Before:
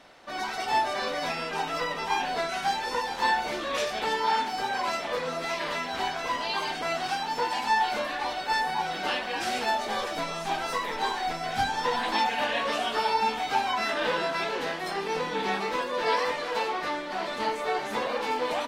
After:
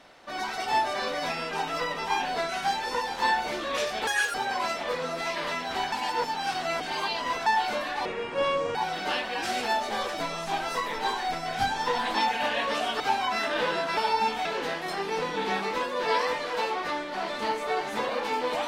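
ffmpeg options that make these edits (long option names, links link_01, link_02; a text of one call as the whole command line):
ffmpeg -i in.wav -filter_complex "[0:a]asplit=10[link_01][link_02][link_03][link_04][link_05][link_06][link_07][link_08][link_09][link_10];[link_01]atrim=end=4.074[link_11];[link_02]atrim=start=4.07:end=4.58,asetpts=PTS-STARTPTS,asetrate=82467,aresample=44100,atrim=end_sample=12027,asetpts=PTS-STARTPTS[link_12];[link_03]atrim=start=4.576:end=6.162[link_13];[link_04]atrim=start=6.158:end=7.702,asetpts=PTS-STARTPTS,areverse[link_14];[link_05]atrim=start=7.698:end=8.294[link_15];[link_06]atrim=start=8.29:end=8.73,asetpts=PTS-STARTPTS,asetrate=27783,aresample=44100[link_16];[link_07]atrim=start=8.726:end=12.982[link_17];[link_08]atrim=start=13.458:end=14.432[link_18];[link_09]atrim=start=12.978:end=13.462[link_19];[link_10]atrim=start=14.428[link_20];[link_11][link_12]acrossfade=duration=0.004:curve1=hsin:curve2=hsin[link_21];[link_21][link_13]acrossfade=duration=0.004:curve1=hsin:curve2=hsin[link_22];[link_22][link_14]acrossfade=duration=0.004:curve1=hsin:curve2=hsin[link_23];[link_23][link_15]acrossfade=duration=0.004:curve1=hsin:curve2=hsin[link_24];[link_24][link_16]acrossfade=duration=0.004:curve1=hsin:curve2=hsin[link_25];[link_25][link_17]acrossfade=duration=0.004:curve1=hsin:curve2=hsin[link_26];[link_26][link_18]acrossfade=duration=0.004:curve1=hsin:curve2=hsin[link_27];[link_27][link_19]acrossfade=duration=0.004:curve1=hsin:curve2=hsin[link_28];[link_28][link_20]acrossfade=duration=0.004:curve1=hsin:curve2=hsin" out.wav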